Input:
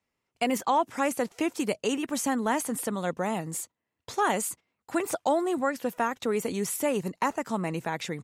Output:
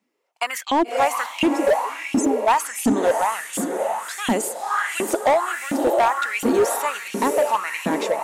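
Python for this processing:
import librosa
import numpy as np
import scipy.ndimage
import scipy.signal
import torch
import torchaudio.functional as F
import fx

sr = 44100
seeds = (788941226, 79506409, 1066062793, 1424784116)

y = fx.spec_expand(x, sr, power=3.7, at=(1.48, 2.48))
y = fx.echo_diffused(y, sr, ms=584, feedback_pct=46, wet_db=-5.0)
y = fx.filter_lfo_highpass(y, sr, shape='saw_up', hz=1.4, low_hz=210.0, high_hz=3000.0, q=5.1)
y = np.clip(y, -10.0 ** (-16.5 / 20.0), 10.0 ** (-16.5 / 20.0))
y = y * librosa.db_to_amplitude(4.0)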